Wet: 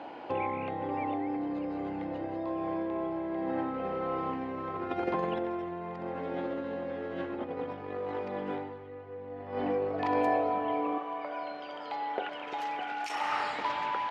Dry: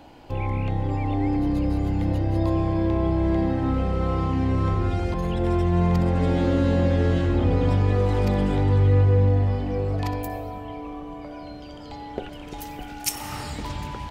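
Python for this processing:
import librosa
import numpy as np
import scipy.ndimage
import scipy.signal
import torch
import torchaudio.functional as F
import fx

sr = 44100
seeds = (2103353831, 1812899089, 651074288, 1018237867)

y = fx.over_compress(x, sr, threshold_db=-28.0, ratio=-1.0)
y = fx.bandpass_edges(y, sr, low_hz=fx.steps((0.0, 370.0), (10.98, 730.0)), high_hz=2200.0)
y = F.gain(torch.from_numpy(y), 1.5).numpy()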